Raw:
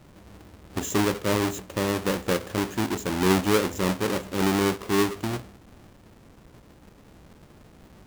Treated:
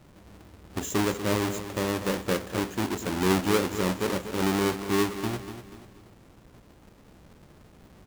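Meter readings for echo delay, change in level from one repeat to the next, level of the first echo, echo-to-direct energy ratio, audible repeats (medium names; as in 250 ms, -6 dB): 242 ms, -8.0 dB, -11.0 dB, -10.0 dB, 4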